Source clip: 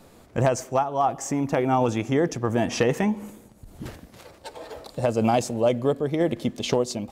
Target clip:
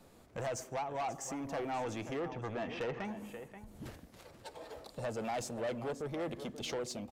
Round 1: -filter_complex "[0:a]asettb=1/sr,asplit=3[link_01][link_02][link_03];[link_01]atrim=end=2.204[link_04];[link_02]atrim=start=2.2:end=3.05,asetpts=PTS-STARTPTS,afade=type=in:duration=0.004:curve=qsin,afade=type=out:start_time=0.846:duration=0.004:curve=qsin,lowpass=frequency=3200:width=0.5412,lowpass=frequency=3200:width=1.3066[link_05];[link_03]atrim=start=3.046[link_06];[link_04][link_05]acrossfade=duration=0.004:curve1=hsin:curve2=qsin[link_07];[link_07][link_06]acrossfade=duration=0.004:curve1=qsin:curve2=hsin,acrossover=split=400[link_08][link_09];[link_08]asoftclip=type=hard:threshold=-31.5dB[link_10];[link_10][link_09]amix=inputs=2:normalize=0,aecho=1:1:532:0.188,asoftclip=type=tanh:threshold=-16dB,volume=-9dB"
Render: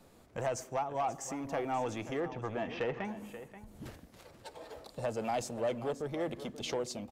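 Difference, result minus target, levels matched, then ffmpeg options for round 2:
soft clipping: distortion −8 dB
-filter_complex "[0:a]asettb=1/sr,asplit=3[link_01][link_02][link_03];[link_01]atrim=end=2.204[link_04];[link_02]atrim=start=2.2:end=3.05,asetpts=PTS-STARTPTS,afade=type=in:duration=0.004:curve=qsin,afade=type=out:start_time=0.846:duration=0.004:curve=qsin,lowpass=frequency=3200:width=0.5412,lowpass=frequency=3200:width=1.3066[link_05];[link_03]atrim=start=3.046[link_06];[link_04][link_05]acrossfade=duration=0.004:curve1=hsin:curve2=qsin[link_07];[link_07][link_06]acrossfade=duration=0.004:curve1=qsin:curve2=hsin,acrossover=split=400[link_08][link_09];[link_08]asoftclip=type=hard:threshold=-31.5dB[link_10];[link_10][link_09]amix=inputs=2:normalize=0,aecho=1:1:532:0.188,asoftclip=type=tanh:threshold=-23.5dB,volume=-9dB"

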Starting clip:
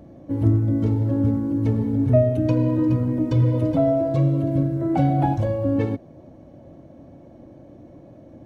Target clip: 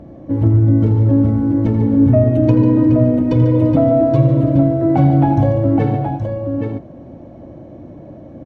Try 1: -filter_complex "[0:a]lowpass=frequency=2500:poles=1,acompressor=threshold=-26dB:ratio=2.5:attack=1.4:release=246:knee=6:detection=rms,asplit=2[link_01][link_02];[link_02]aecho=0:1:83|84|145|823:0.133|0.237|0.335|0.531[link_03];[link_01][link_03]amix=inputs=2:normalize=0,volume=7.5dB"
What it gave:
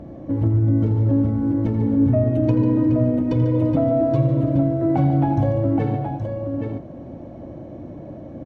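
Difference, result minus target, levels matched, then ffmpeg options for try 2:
downward compressor: peak gain reduction +6.5 dB
-filter_complex "[0:a]lowpass=frequency=2500:poles=1,acompressor=threshold=-15dB:ratio=2.5:attack=1.4:release=246:knee=6:detection=rms,asplit=2[link_01][link_02];[link_02]aecho=0:1:83|84|145|823:0.133|0.237|0.335|0.531[link_03];[link_01][link_03]amix=inputs=2:normalize=0,volume=7.5dB"

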